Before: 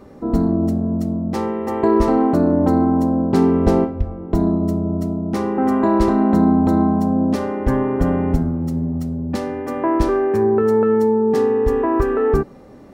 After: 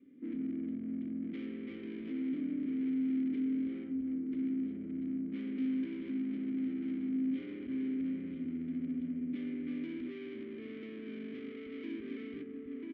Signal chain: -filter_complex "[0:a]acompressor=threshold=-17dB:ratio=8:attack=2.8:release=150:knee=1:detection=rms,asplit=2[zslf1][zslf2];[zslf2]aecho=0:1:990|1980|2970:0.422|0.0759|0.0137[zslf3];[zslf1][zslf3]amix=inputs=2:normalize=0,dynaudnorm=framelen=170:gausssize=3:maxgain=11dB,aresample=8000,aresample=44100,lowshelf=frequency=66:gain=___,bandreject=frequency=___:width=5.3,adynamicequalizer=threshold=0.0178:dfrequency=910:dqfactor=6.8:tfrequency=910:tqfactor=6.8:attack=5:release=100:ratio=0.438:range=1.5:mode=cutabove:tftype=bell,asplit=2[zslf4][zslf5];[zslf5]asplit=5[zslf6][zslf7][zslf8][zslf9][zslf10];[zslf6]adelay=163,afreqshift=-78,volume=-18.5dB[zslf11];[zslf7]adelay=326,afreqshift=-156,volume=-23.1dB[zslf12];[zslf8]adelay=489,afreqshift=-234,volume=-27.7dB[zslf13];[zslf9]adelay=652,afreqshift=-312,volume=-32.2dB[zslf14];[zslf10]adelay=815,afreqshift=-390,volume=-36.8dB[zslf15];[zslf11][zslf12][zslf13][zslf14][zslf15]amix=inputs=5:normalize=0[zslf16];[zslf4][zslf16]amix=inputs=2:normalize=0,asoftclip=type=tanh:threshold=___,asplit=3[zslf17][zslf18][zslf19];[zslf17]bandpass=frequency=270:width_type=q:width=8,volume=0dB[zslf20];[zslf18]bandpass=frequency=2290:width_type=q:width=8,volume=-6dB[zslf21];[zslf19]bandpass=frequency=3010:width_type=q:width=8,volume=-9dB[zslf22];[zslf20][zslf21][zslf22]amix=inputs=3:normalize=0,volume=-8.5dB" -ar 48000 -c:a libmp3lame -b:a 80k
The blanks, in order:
-6, 630, -18.5dB